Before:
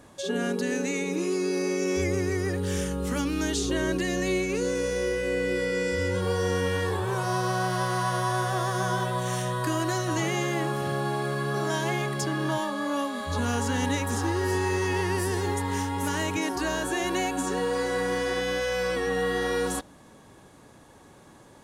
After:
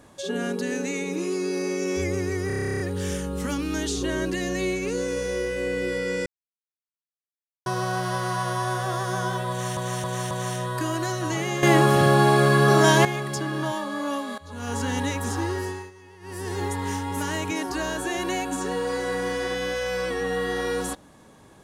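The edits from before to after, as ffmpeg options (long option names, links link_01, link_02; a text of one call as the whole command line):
ffmpeg -i in.wav -filter_complex "[0:a]asplit=22[link_01][link_02][link_03][link_04][link_05][link_06][link_07][link_08][link_09][link_10][link_11][link_12][link_13][link_14][link_15][link_16][link_17][link_18][link_19][link_20][link_21][link_22];[link_01]atrim=end=2.502[link_23];[link_02]atrim=start=2.468:end=2.502[link_24];[link_03]atrim=start=2.468:end=2.502[link_25];[link_04]atrim=start=2.468:end=2.502[link_26];[link_05]atrim=start=2.468:end=2.502[link_27];[link_06]atrim=start=2.468:end=2.502[link_28];[link_07]atrim=start=2.468:end=2.502[link_29];[link_08]atrim=start=2.468:end=2.502[link_30];[link_09]atrim=start=2.468:end=2.502[link_31];[link_10]atrim=start=2.468:end=2.502[link_32];[link_11]atrim=start=2.468:end=2.502[link_33];[link_12]atrim=start=2.468:end=5.93,asetpts=PTS-STARTPTS,afade=type=out:start_time=3.458:duration=0.004:curve=hsin[link_34];[link_13]atrim=start=5.93:end=7.33,asetpts=PTS-STARTPTS,volume=0[link_35];[link_14]atrim=start=7.33:end=9.442,asetpts=PTS-STARTPTS,afade=type=in:duration=0.004:curve=hsin[link_36];[link_15]atrim=start=9.168:end=9.442[link_37];[link_16]atrim=start=9.168:end=9.442[link_38];[link_17]atrim=start=9.168:end=10.492[link_39];[link_18]atrim=start=10.488:end=11.912,asetpts=PTS-STARTPTS,volume=11dB[link_40];[link_19]atrim=start=11.908:end=13.24,asetpts=PTS-STARTPTS,afade=type=out:start_time=1.328:duration=0.004:curve=hsin:silence=0.158489[link_41];[link_20]atrim=start=13.24:end=14.77,asetpts=PTS-STARTPTS,afade=type=in:duration=0.39:curve=qua:silence=0.158489,afade=type=out:start_time=1.1:duration=0.43:silence=0.0794328[link_42];[link_21]atrim=start=14.77:end=15.06,asetpts=PTS-STARTPTS,volume=-22dB[link_43];[link_22]atrim=start=15.06,asetpts=PTS-STARTPTS,afade=type=in:duration=0.43:silence=0.0794328[link_44];[link_23][link_24]acrossfade=duration=0.004:curve1=hsin:curve2=hsin[link_45];[link_45][link_25]acrossfade=duration=0.004:curve1=hsin:curve2=hsin[link_46];[link_46][link_26]acrossfade=duration=0.004:curve1=hsin:curve2=hsin[link_47];[link_47][link_27]acrossfade=duration=0.004:curve1=hsin:curve2=hsin[link_48];[link_48][link_28]acrossfade=duration=0.004:curve1=hsin:curve2=hsin[link_49];[link_49][link_29]acrossfade=duration=0.004:curve1=hsin:curve2=hsin[link_50];[link_50][link_30]acrossfade=duration=0.004:curve1=hsin:curve2=hsin[link_51];[link_51][link_31]acrossfade=duration=0.004:curve1=hsin:curve2=hsin[link_52];[link_52][link_32]acrossfade=duration=0.004:curve1=hsin:curve2=hsin[link_53];[link_53][link_33]acrossfade=duration=0.004:curve1=hsin:curve2=hsin[link_54];[link_34][link_35][link_36]concat=n=3:v=0:a=1[link_55];[link_54][link_55]acrossfade=duration=0.004:curve1=hsin:curve2=hsin[link_56];[link_56][link_37]acrossfade=duration=0.004:curve1=hsin:curve2=hsin[link_57];[link_57][link_38]acrossfade=duration=0.004:curve1=hsin:curve2=hsin[link_58];[link_58][link_39]acrossfade=duration=0.004:curve1=hsin:curve2=hsin[link_59];[link_59][link_40]acrossfade=duration=0.004:curve1=hsin:curve2=hsin[link_60];[link_41][link_42][link_43][link_44]concat=n=4:v=0:a=1[link_61];[link_60][link_61]acrossfade=duration=0.004:curve1=hsin:curve2=hsin" out.wav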